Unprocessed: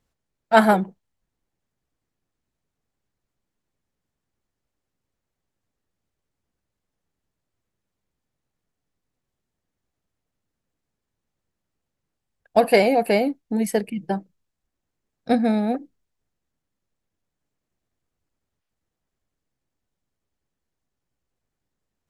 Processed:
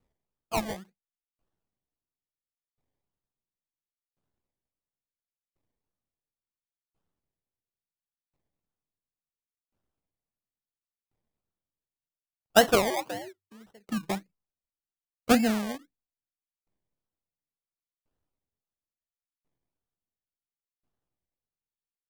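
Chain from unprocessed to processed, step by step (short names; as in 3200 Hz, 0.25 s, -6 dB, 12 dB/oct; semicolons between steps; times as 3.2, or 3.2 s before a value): decimation with a swept rate 26×, swing 60% 1.8 Hz; 12.9–13.52 frequency shift +95 Hz; dB-ramp tremolo decaying 0.72 Hz, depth 37 dB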